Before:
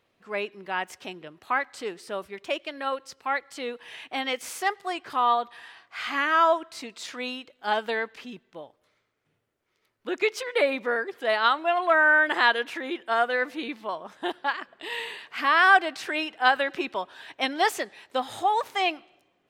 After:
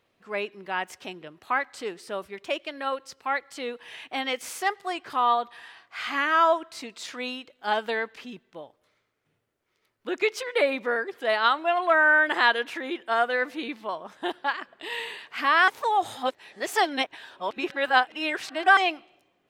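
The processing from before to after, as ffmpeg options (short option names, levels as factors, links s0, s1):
-filter_complex "[0:a]asplit=3[s0][s1][s2];[s0]atrim=end=15.682[s3];[s1]atrim=start=15.678:end=18.772,asetpts=PTS-STARTPTS,areverse[s4];[s2]atrim=start=18.768[s5];[s3][s4]acrossfade=d=0.004:c1=hsin:c2=hsin[s6];[s6][s5]acrossfade=d=0.004:c1=hsin:c2=hsin"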